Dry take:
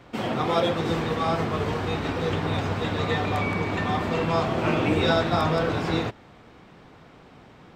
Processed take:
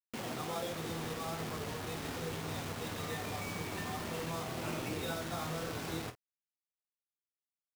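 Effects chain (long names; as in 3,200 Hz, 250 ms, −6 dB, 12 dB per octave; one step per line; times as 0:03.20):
downward compressor 2 to 1, threshold −37 dBFS, peak gain reduction 11 dB
bit-depth reduction 6 bits, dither none
on a send: ambience of single reflections 25 ms −11 dB, 49 ms −14 dB
on the sum: level −7 dB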